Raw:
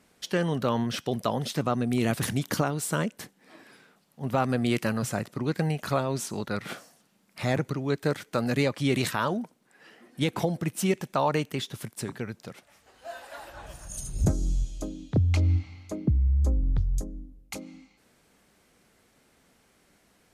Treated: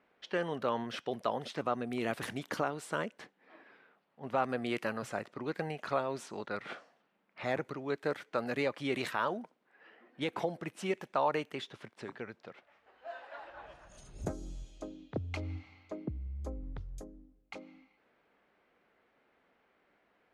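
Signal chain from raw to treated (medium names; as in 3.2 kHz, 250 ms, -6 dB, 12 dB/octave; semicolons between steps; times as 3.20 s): level-controlled noise filter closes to 2.9 kHz, open at -24 dBFS; tone controls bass -14 dB, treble -12 dB; trim -4 dB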